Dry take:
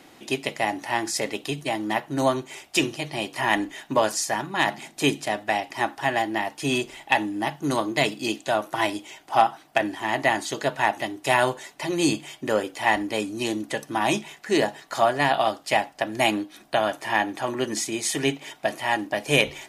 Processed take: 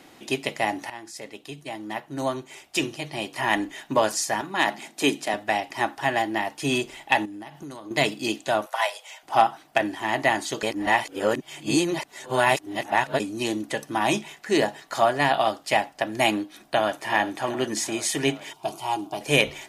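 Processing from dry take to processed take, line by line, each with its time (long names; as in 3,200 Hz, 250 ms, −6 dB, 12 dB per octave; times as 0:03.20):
0:00.90–0:03.86: fade in, from −15.5 dB
0:04.41–0:05.34: high-pass filter 180 Hz 24 dB per octave
0:07.25–0:07.91: downward compressor 12 to 1, threshold −35 dBFS
0:08.66–0:09.23: Butterworth high-pass 480 Hz 72 dB per octave
0:10.63–0:13.20: reverse
0:16.38–0:17.11: delay throw 380 ms, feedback 70%, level −12.5 dB
0:18.53–0:19.21: phaser with its sweep stopped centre 360 Hz, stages 8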